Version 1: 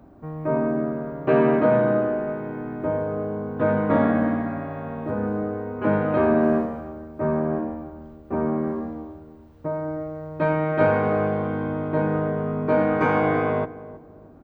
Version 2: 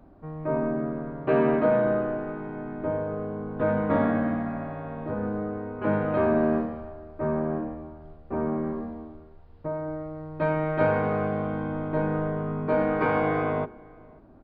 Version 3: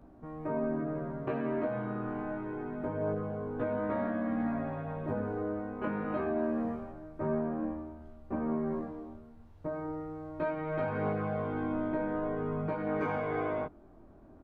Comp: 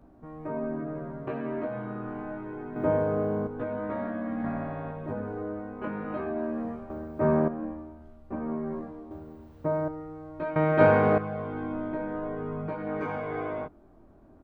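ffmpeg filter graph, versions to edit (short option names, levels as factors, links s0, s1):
-filter_complex "[0:a]asplit=4[s0][s1][s2][s3];[2:a]asplit=6[s4][s5][s6][s7][s8][s9];[s4]atrim=end=2.762[s10];[s0]atrim=start=2.758:end=3.472[s11];[s5]atrim=start=3.468:end=4.442[s12];[1:a]atrim=start=4.438:end=4.912[s13];[s6]atrim=start=4.908:end=6.902[s14];[s1]atrim=start=6.898:end=7.482[s15];[s7]atrim=start=7.478:end=9.112[s16];[s2]atrim=start=9.108:end=9.882[s17];[s8]atrim=start=9.878:end=10.562[s18];[s3]atrim=start=10.558:end=11.182[s19];[s9]atrim=start=11.178[s20];[s10][s11]acrossfade=d=0.004:c1=hsin:c2=hsin[s21];[s21][s12]acrossfade=d=0.004:c1=hsin:c2=hsin[s22];[s22][s13]acrossfade=d=0.004:c1=hsin:c2=hsin[s23];[s23][s14]acrossfade=d=0.004:c1=hsin:c2=hsin[s24];[s24][s15]acrossfade=d=0.004:c1=hsin:c2=hsin[s25];[s25][s16]acrossfade=d=0.004:c1=hsin:c2=hsin[s26];[s26][s17]acrossfade=d=0.004:c1=hsin:c2=hsin[s27];[s27][s18]acrossfade=d=0.004:c1=hsin:c2=hsin[s28];[s28][s19]acrossfade=d=0.004:c1=hsin:c2=hsin[s29];[s29][s20]acrossfade=d=0.004:c1=hsin:c2=hsin"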